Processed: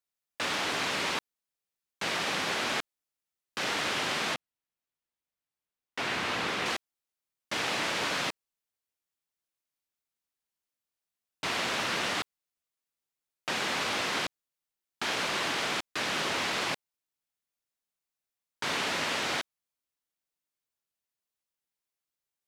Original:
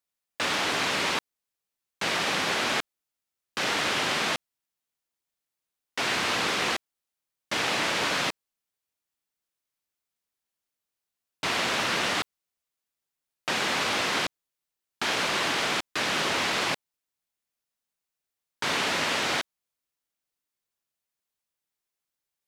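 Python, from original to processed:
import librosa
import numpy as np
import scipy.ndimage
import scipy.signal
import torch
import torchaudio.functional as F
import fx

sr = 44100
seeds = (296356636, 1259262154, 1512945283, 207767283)

y = fx.bass_treble(x, sr, bass_db=2, treble_db=-6, at=(4.34, 6.66))
y = F.gain(torch.from_numpy(y), -4.0).numpy()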